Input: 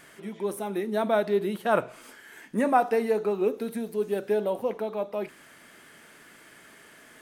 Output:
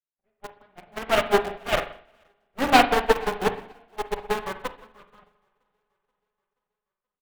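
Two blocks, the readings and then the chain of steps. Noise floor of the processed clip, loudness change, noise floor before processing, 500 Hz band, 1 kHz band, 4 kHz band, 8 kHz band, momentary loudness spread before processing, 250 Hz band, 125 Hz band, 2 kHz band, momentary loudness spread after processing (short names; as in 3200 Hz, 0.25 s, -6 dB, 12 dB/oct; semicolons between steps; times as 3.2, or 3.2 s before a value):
under -85 dBFS, +4.0 dB, -53 dBFS, -1.0 dB, +5.0 dB, +14.5 dB, +7.0 dB, 15 LU, -1.0 dB, +0.5 dB, +8.0 dB, 20 LU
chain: CVSD 16 kbps; low-pass opened by the level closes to 1300 Hz, open at -21 dBFS; in parallel at -12 dB: bit-crush 4-bit; on the sum: added harmonics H 3 -16 dB, 7 -23 dB, 8 -16 dB, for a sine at -9 dBFS; on a send: feedback echo 0.479 s, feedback 56%, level -15.5 dB; on the sum: spring tank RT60 1.3 s, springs 41/58 ms, chirp 50 ms, DRR 2 dB; upward expander 2.5:1, over -41 dBFS; gain +7.5 dB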